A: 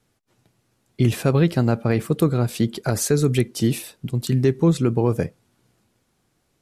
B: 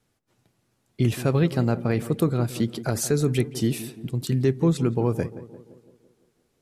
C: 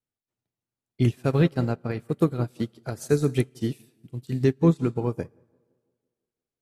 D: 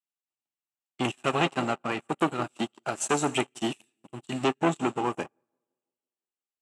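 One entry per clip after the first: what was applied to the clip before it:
tape echo 0.171 s, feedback 64%, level -11.5 dB, low-pass 1000 Hz; gain -3.5 dB
on a send at -12 dB: reverb RT60 1.8 s, pre-delay 5 ms; on the sum: upward expander 2.5:1, over -34 dBFS; gain +3 dB
sample leveller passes 3; speaker cabinet 330–9500 Hz, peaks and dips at 470 Hz -9 dB, 810 Hz +6 dB, 1200 Hz +5 dB, 2800 Hz +10 dB, 4700 Hz -7 dB, 7700 Hz +10 dB; gain -5 dB

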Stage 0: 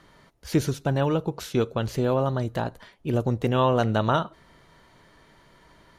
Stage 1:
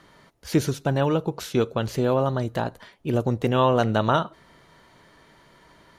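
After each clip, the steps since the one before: low shelf 66 Hz -8.5 dB; gain +2 dB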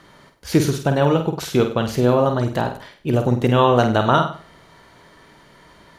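flutter echo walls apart 8.4 m, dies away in 0.42 s; gain +4.5 dB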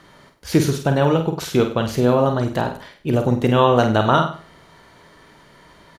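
doubler 37 ms -14 dB

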